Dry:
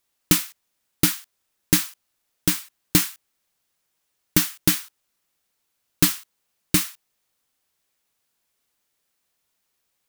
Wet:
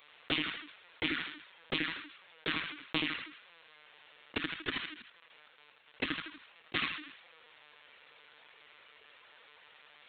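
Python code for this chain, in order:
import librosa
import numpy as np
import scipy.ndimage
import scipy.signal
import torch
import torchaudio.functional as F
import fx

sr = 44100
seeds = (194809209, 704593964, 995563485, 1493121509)

y = fx.level_steps(x, sr, step_db=15, at=(4.37, 6.75))
y = fx.bandpass_edges(y, sr, low_hz=150.0, high_hz=2300.0)
y = fx.peak_eq(y, sr, hz=480.0, db=6.5, octaves=0.24)
y = fx.echo_feedback(y, sr, ms=80, feedback_pct=28, wet_db=-5.5)
y = fx.env_flanger(y, sr, rest_ms=6.8, full_db=-19.0)
y = fx.lpc_vocoder(y, sr, seeds[0], excitation='pitch_kept', order=16)
y = fx.tilt_eq(y, sr, slope=4.5)
y = fx.env_flatten(y, sr, amount_pct=50)
y = F.gain(torch.from_numpy(y), -5.0).numpy()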